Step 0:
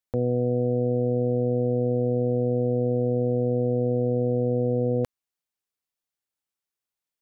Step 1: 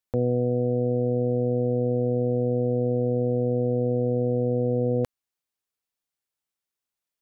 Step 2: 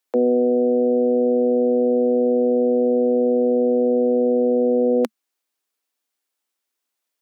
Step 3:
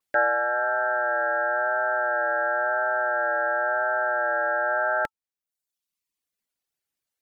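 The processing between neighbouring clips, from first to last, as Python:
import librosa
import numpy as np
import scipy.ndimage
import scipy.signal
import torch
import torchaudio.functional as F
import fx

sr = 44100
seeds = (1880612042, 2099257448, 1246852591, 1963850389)

y1 = fx.rider(x, sr, range_db=10, speed_s=0.5)
y2 = scipy.signal.sosfilt(scipy.signal.butter(16, 220.0, 'highpass', fs=sr, output='sos'), y1)
y2 = F.gain(torch.from_numpy(y2), 7.5).numpy()
y3 = fx.vibrato(y2, sr, rate_hz=0.96, depth_cents=56.0)
y3 = y3 * np.sin(2.0 * np.pi * 1100.0 * np.arange(len(y3)) / sr)
y3 = fx.dereverb_blind(y3, sr, rt60_s=0.95)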